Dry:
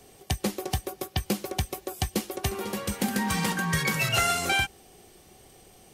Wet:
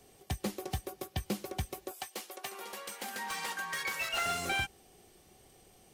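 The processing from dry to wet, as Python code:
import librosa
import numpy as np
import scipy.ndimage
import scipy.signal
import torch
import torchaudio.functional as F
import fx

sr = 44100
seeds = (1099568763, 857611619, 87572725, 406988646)

y = fx.highpass(x, sr, hz=610.0, slope=12, at=(1.91, 4.26))
y = fx.slew_limit(y, sr, full_power_hz=190.0)
y = y * librosa.db_to_amplitude(-7.0)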